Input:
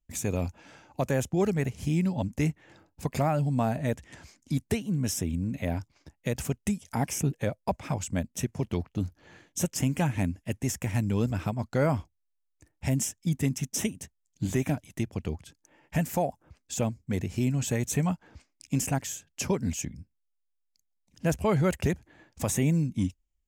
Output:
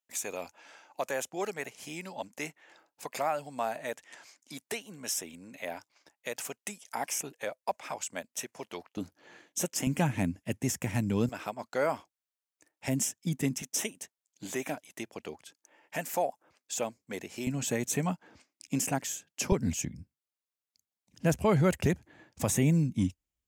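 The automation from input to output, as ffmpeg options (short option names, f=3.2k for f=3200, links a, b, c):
-af "asetnsamples=n=441:p=0,asendcmd='8.97 highpass f 290;9.87 highpass f 130;11.29 highpass f 460;12.88 highpass f 190;13.62 highpass f 440;17.47 highpass f 210;19.52 highpass f 83',highpass=610"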